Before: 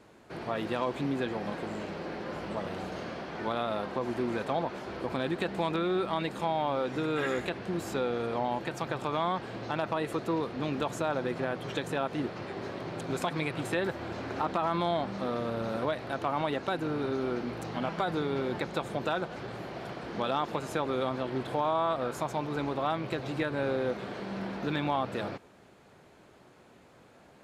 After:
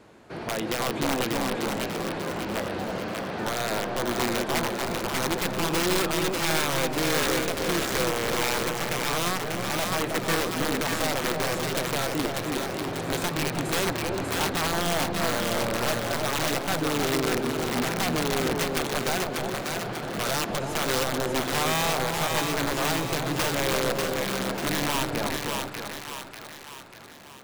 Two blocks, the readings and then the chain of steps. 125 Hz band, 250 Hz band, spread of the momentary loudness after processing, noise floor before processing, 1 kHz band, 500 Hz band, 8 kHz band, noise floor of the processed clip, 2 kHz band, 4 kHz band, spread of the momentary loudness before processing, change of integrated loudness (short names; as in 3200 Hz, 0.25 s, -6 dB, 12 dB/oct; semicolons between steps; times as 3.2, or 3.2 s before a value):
+5.5 dB, +4.0 dB, 6 LU, -57 dBFS, +3.5 dB, +3.5 dB, +21.0 dB, -42 dBFS, +9.5 dB, +13.0 dB, 8 LU, +6.0 dB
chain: wrapped overs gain 24 dB; split-band echo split 870 Hz, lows 0.315 s, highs 0.592 s, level -3 dB; gain +4 dB